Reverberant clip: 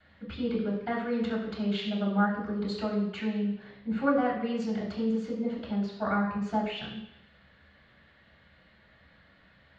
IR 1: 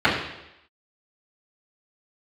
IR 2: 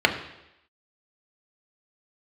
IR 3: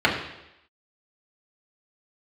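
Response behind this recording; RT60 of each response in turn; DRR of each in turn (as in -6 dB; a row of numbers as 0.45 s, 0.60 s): 1; 0.85 s, 0.85 s, 0.85 s; -13.5 dB, 3.0 dB, -4.5 dB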